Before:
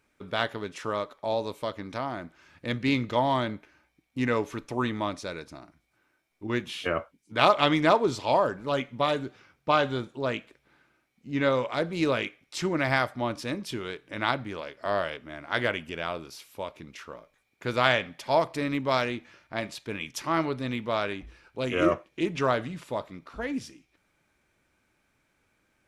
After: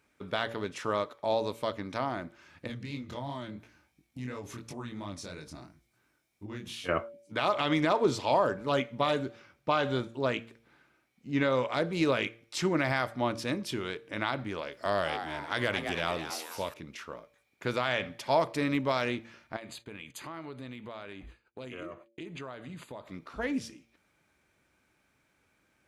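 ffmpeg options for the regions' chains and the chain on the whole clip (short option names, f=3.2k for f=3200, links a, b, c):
-filter_complex "[0:a]asettb=1/sr,asplit=3[a][b][c];[a]atrim=end=2.674[d];[b]atrim=start=2.67:end=6.89,asetpts=PTS-STARTPTS,afade=t=in:d=0.004:c=qsin,afade=t=out:st=4.216:d=0.004:c=qsin,bass=f=250:g=8,treble=f=4k:g=7,acompressor=threshold=-36dB:ratio=3:attack=3.2:release=140:knee=1:detection=peak,flanger=delay=20:depth=4.9:speed=2.9[e];[c]atrim=start=6.886[f];[d][e]acrossfade=d=0.004:c1=hsin:c2=qsin[g];[g][f]acrossfade=d=0.004:c1=qsin:c2=hsin,asettb=1/sr,asplit=3[h][i][j];[h]atrim=end=14.724[k];[i]atrim=start=14.72:end=16.74,asetpts=PTS-STARTPTS,afade=t=in:d=0.004:c=qsin,afade=t=out:st=2.016:d=0.004:c=qsin,bass=f=250:g=3,treble=f=4k:g=8,asplit=6[l][m][n][o][p][q];[m]adelay=214,afreqshift=150,volume=-10dB[r];[n]adelay=428,afreqshift=300,volume=-16dB[s];[o]adelay=642,afreqshift=450,volume=-22dB[t];[p]adelay=856,afreqshift=600,volume=-28.1dB[u];[q]adelay=1070,afreqshift=750,volume=-34.1dB[v];[l][r][s][t][u][v]amix=inputs=6:normalize=0,atrim=end_sample=89082[w];[j]atrim=start=16.736[x];[k][w]acrossfade=d=0.004:c1=hsin:c2=qsin[y];[y][x]acrossfade=d=0.004:c1=qsin:c2=hsin,asettb=1/sr,asplit=3[z][aa][ab];[z]atrim=end=19.564[ac];[aa]atrim=start=19.56:end=23.07,asetpts=PTS-STARTPTS,afade=t=in:d=0.004:c=qsin,afade=t=out:st=3.506:d=0.004:c=qsin,agate=range=-33dB:threshold=-47dB:ratio=3:release=100:detection=peak,asuperstop=centerf=5500:order=8:qfactor=4.8,acompressor=threshold=-40dB:ratio=5:attack=3.2:release=140:knee=1:detection=peak[ad];[ab]atrim=start=23.066[ae];[ac][ad]acrossfade=d=0.004:c1=hsin:c2=qsin[af];[af][ae]acrossfade=d=0.004:c1=qsin:c2=hsin,highpass=48,bandreject=f=114.6:t=h:w=4,bandreject=f=229.2:t=h:w=4,bandreject=f=343.8:t=h:w=4,bandreject=f=458.4:t=h:w=4,bandreject=f=573:t=h:w=4,alimiter=limit=-15dB:level=0:latency=1:release=96"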